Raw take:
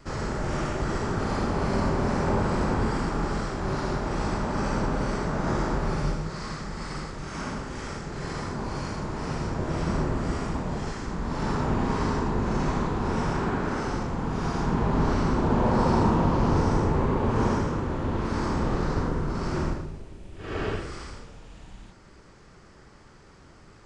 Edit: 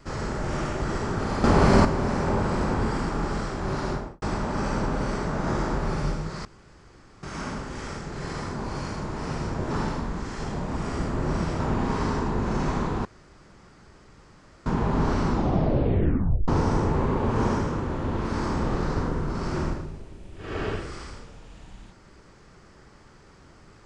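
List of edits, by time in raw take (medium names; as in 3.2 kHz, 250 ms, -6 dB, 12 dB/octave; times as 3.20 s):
1.44–1.85 s: gain +8.5 dB
3.89–4.22 s: studio fade out
6.45–7.23 s: room tone
9.71–11.60 s: reverse
13.05–14.66 s: room tone
15.27 s: tape stop 1.21 s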